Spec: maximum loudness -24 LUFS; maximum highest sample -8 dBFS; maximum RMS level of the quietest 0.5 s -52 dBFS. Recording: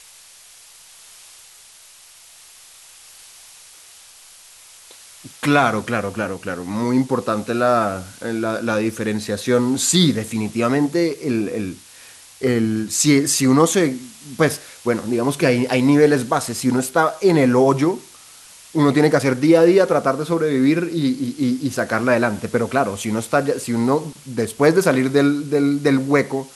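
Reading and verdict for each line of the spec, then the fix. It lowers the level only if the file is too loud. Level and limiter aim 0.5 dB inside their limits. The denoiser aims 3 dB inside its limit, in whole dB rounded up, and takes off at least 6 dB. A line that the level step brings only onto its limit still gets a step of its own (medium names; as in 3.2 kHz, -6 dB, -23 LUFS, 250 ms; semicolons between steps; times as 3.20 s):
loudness -18.5 LUFS: fail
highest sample -2.0 dBFS: fail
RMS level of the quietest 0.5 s -46 dBFS: fail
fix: noise reduction 6 dB, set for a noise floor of -46 dBFS; trim -6 dB; peak limiter -8.5 dBFS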